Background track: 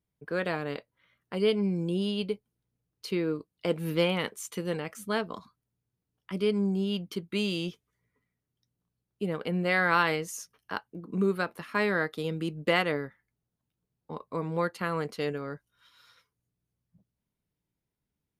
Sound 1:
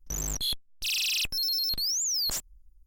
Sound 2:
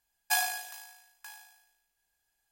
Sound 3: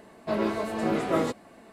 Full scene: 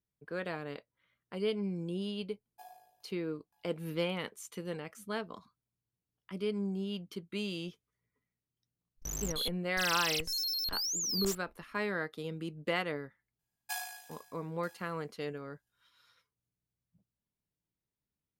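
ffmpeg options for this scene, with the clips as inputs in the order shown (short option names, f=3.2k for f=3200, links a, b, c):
-filter_complex "[2:a]asplit=2[a][b];[0:a]volume=-7.5dB[c];[a]firequalizer=gain_entry='entry(580,0);entry(1400,-24);entry(3100,-21);entry(7600,-25);entry(12000,-18)':delay=0.05:min_phase=1[d];[1:a]agate=range=-33dB:threshold=-46dB:ratio=3:release=100:detection=peak[e];[d]atrim=end=2.51,asetpts=PTS-STARTPTS,volume=-13dB,afade=t=in:d=0.004:c=hsin,afade=t=out:st=2.506:d=0.004:c=hsin,adelay=2280[f];[e]atrim=end=2.86,asetpts=PTS-STARTPTS,volume=-6dB,afade=t=in:d=0.004:c=hsin,afade=t=out:st=2.856:d=0.004:c=hsin,adelay=8950[g];[b]atrim=end=2.51,asetpts=PTS-STARTPTS,volume=-11dB,afade=t=in:d=0.004:c=hsin,afade=t=out:st=2.506:d=0.004:c=hsin,adelay=13390[h];[c][f][g][h]amix=inputs=4:normalize=0"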